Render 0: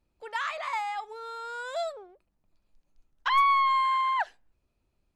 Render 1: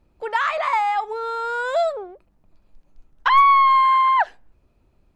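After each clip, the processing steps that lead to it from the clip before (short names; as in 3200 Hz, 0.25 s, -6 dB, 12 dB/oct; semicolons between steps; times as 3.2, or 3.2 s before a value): high shelf 2500 Hz -11 dB; in parallel at 0 dB: compressor, threshold -34 dBFS, peak gain reduction 12.5 dB; on the sum: gain +8.5 dB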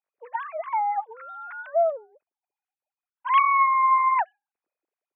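sine-wave speech; gain -5 dB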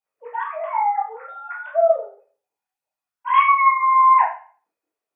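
reverb RT60 0.40 s, pre-delay 5 ms, DRR -5 dB; gain -1.5 dB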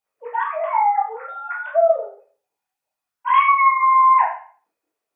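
compressor 2:1, threshold -18 dBFS, peak gain reduction 5 dB; gain +4 dB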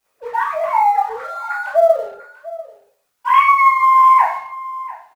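G.711 law mismatch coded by mu; echo 0.694 s -17.5 dB; gain +3 dB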